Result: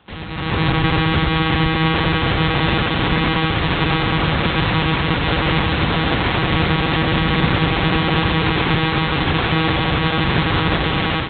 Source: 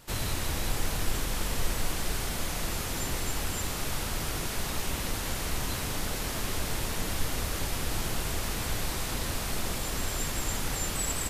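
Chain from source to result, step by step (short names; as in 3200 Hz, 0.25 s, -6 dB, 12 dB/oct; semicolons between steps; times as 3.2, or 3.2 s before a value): monotone LPC vocoder at 8 kHz 160 Hz; HPF 56 Hz; notch 630 Hz, Q 13; on a send: split-band echo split 2100 Hz, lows 91 ms, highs 0.679 s, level -6.5 dB; on the sum: AGC gain up to 15 dB; gain +2 dB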